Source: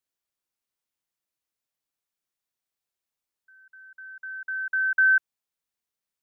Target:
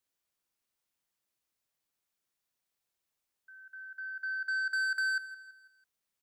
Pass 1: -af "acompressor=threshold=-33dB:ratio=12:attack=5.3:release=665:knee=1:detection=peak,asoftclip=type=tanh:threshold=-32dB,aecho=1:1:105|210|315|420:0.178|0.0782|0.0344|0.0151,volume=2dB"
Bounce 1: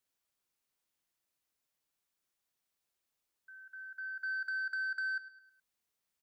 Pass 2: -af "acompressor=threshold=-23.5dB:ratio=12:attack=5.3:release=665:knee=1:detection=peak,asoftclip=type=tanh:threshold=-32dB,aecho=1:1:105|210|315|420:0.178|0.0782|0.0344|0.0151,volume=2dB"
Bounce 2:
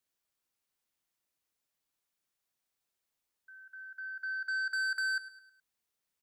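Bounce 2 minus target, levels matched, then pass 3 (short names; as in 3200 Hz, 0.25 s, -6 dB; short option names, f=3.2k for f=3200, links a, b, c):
echo 60 ms early
-af "acompressor=threshold=-23.5dB:ratio=12:attack=5.3:release=665:knee=1:detection=peak,asoftclip=type=tanh:threshold=-32dB,aecho=1:1:165|330|495|660:0.178|0.0782|0.0344|0.0151,volume=2dB"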